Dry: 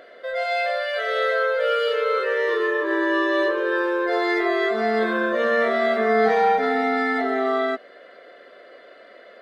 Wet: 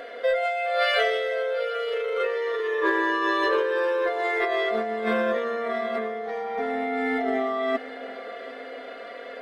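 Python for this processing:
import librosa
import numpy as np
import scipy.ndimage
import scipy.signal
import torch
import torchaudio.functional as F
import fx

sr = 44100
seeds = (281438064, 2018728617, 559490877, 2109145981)

p1 = fx.peak_eq(x, sr, hz=170.0, db=-10.0, octaves=0.54)
p2 = p1 + 0.75 * np.pad(p1, (int(4.2 * sr / 1000.0), 0))[:len(p1)]
p3 = fx.over_compress(p2, sr, threshold_db=-26.0, ratio=-1.0)
y = p3 + fx.echo_feedback(p3, sr, ms=752, feedback_pct=54, wet_db=-17, dry=0)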